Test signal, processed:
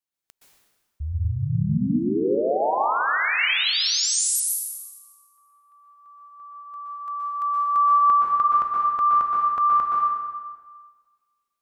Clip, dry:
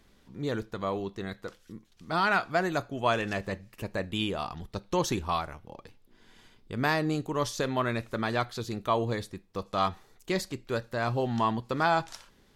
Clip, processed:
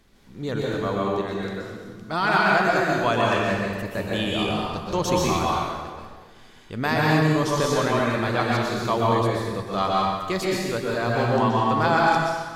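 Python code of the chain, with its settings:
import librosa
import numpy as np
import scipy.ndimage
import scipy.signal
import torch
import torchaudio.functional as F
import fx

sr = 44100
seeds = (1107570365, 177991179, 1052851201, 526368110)

y = fx.rev_plate(x, sr, seeds[0], rt60_s=1.5, hf_ratio=0.85, predelay_ms=110, drr_db=-4.5)
y = y * 10.0 ** (2.0 / 20.0)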